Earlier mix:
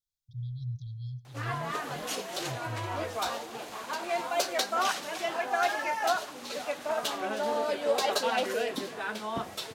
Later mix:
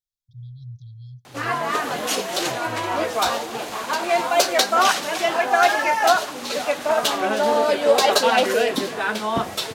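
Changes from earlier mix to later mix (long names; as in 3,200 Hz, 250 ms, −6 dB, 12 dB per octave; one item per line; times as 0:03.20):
speech: send −11.0 dB
background +11.0 dB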